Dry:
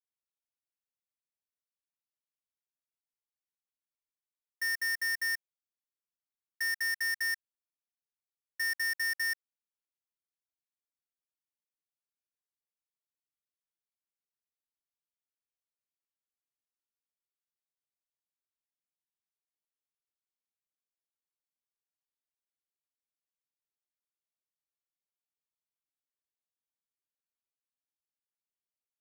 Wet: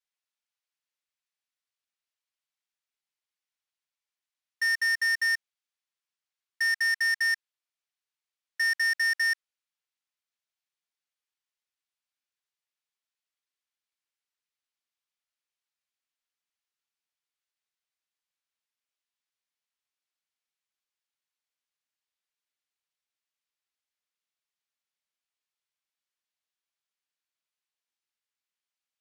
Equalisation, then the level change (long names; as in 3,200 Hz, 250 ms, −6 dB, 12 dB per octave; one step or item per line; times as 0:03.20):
resonant band-pass 2,700 Hz, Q 0.56
+7.5 dB